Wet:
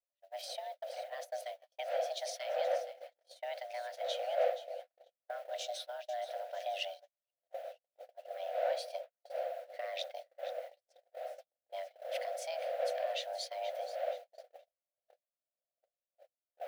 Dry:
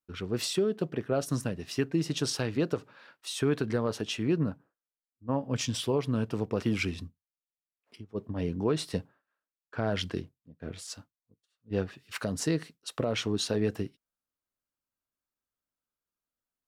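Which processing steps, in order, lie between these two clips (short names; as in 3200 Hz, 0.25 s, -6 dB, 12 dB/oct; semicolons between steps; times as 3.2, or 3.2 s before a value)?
wind noise 300 Hz -32 dBFS; bit-crush 9-bit; EQ curve 140 Hz 0 dB, 240 Hz -2 dB, 390 Hz -23 dB, 620 Hz -26 dB, 900 Hz -9 dB, 1300 Hz -4 dB, 2400 Hz -1 dB, 3500 Hz -2 dB, 6900 Hz -12 dB, 14000 Hz -7 dB; on a send: split-band echo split 390 Hz, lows 0.297 s, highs 0.476 s, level -13.5 dB; on the sum: frequency shift +490 Hz; gate -35 dBFS, range -50 dB; tilt +1.5 dB/oct; gain -7.5 dB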